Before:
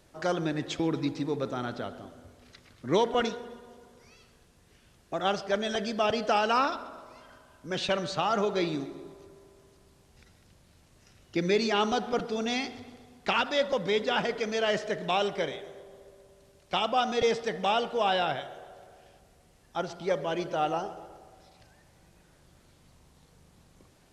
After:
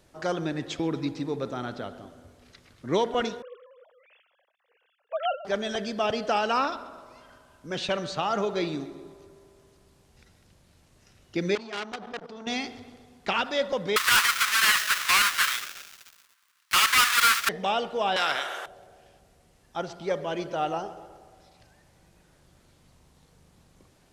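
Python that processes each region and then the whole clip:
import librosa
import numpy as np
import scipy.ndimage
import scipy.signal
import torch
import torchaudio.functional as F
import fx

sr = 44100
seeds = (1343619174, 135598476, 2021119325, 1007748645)

y = fx.chain(x, sr, fx.sine_speech(),
    fx.highpass(hz=250.0, slope=12), at=(3.42, 5.45))
y = fx.chain(y, sr, fx.high_shelf(hz=6300.0, db=-8.0),
    fx.level_steps(step_db=13),
    fx.transformer_sat(knee_hz=3100.0), at=(11.55, 12.47))
y = fx.chain(y, sr, fx.halfwave_hold(),
    fx.steep_highpass(hz=1100.0, slope=48),
    fx.leveller(passes=3), at=(13.96, 17.49))
y = fx.chain(y, sr, fx.highpass(hz=780.0, slope=12),
    fx.peak_eq(hz=1400.0, db=14.5, octaves=0.35),
    fx.spectral_comp(ratio=2.0), at=(18.16, 18.66))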